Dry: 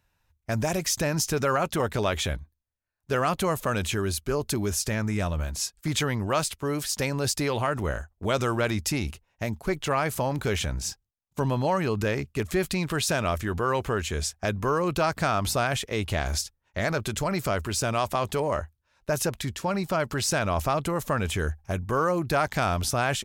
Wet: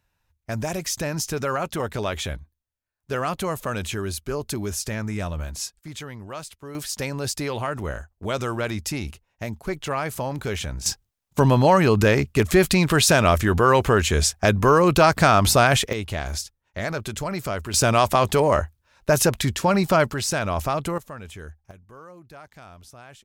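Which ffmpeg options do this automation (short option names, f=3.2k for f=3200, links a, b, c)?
-af "asetnsamples=n=441:p=0,asendcmd='5.79 volume volume -10dB;6.75 volume volume -1dB;10.86 volume volume 9dB;15.93 volume volume -1dB;17.74 volume volume 8dB;20.1 volume volume 1dB;20.98 volume volume -11.5dB;21.71 volume volume -20dB',volume=-1dB"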